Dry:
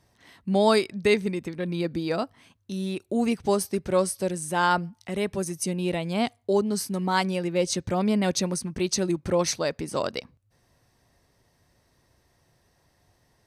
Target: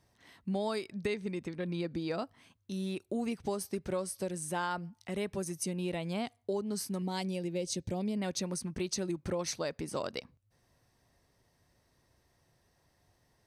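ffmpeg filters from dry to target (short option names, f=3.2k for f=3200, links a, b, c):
-filter_complex "[0:a]asettb=1/sr,asplit=3[a][b][c];[a]atrim=end=1.064[d];[b]atrim=start=1.06:end=2.22,asetpts=PTS-STARTPTS,afade=t=in:d=0.004:c=qsin,afade=t=out:st=1.156:d=0.004:c=qsin,lowpass=8.9k[e];[c]atrim=start=2.216[f];[d][e]acrossfade=d=0.004:c1=hsin:c2=qsin[g];[g][f]acrossfade=d=0.004:c1=qsin:c2=hsin,asettb=1/sr,asplit=3[h][i][j];[h]atrim=end=7.024[k];[i]atrim=start=7.02:end=8.17,asetpts=PTS-STARTPTS,afade=t=in:d=0.004:c=qsin,afade=t=out:st=1.146:d=0.004:c=qsin,equalizer=f=1.3k:w=1.3:g=-14.5[l];[j]atrim=start=8.166[m];[k][l]acrossfade=d=0.004:c1=hsin:c2=qsin[n];[n][m]acrossfade=d=0.004:c1=qsin:c2=hsin,acompressor=threshold=-25dB:ratio=6,volume=-5.5dB"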